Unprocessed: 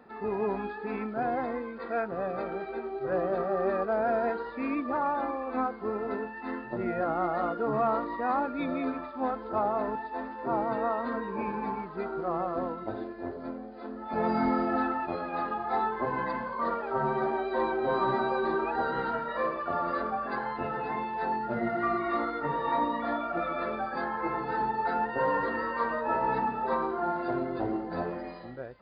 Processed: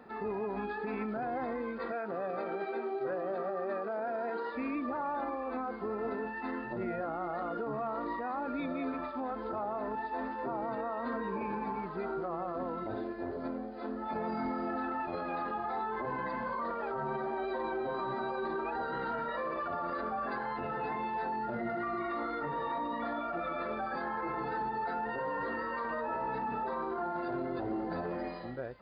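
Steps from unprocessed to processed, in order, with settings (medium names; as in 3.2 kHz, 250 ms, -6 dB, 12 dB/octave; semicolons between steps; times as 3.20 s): 1.92–4.55 s: high-pass 210 Hz 12 dB/octave; peak limiter -29.5 dBFS, peak gain reduction 12 dB; trim +1.5 dB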